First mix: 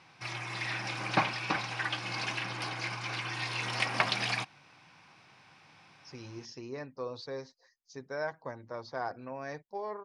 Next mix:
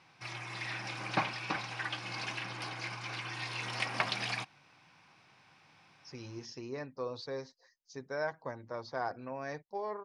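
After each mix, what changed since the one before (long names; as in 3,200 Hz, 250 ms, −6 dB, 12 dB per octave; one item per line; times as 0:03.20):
background −4.0 dB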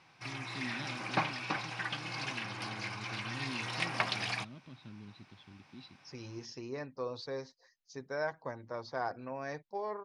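first voice: unmuted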